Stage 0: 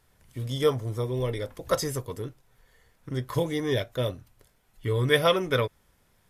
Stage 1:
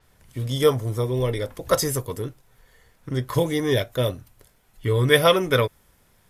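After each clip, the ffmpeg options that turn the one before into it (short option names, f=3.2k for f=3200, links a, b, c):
-af "adynamicequalizer=threshold=0.00447:dfrequency=7800:dqfactor=0.7:tfrequency=7800:tqfactor=0.7:attack=5:release=100:ratio=0.375:range=3:mode=boostabove:tftype=highshelf,volume=5dB"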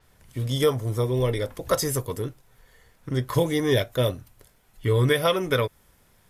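-af "alimiter=limit=-10.5dB:level=0:latency=1:release=268"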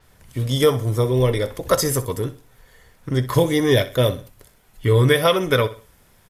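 -af "aecho=1:1:63|126|189:0.168|0.0588|0.0206,volume=5dB"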